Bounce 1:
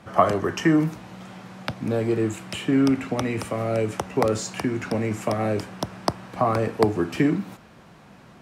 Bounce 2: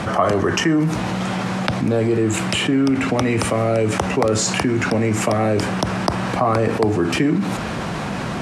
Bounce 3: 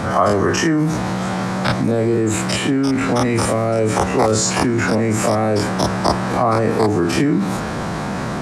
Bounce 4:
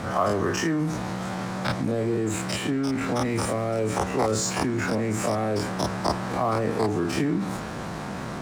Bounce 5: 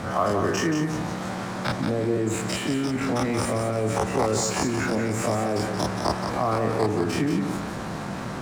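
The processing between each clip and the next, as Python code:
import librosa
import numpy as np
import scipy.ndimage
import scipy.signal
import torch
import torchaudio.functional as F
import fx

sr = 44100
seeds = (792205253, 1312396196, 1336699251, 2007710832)

y1 = scipy.signal.sosfilt(scipy.signal.butter(4, 11000.0, 'lowpass', fs=sr, output='sos'), x)
y1 = fx.env_flatten(y1, sr, amount_pct=70)
y1 = F.gain(torch.from_numpy(y1), -1.5).numpy()
y2 = fx.spec_dilate(y1, sr, span_ms=60)
y2 = fx.peak_eq(y2, sr, hz=2800.0, db=-7.0, octaves=0.73)
y2 = F.gain(torch.from_numpy(y2), -1.5).numpy()
y3 = np.sign(y2) * np.maximum(np.abs(y2) - 10.0 ** (-34.0 / 20.0), 0.0)
y3 = F.gain(torch.from_numpy(y3), -7.5).numpy()
y4 = fx.echo_feedback(y3, sr, ms=178, feedback_pct=31, wet_db=-7)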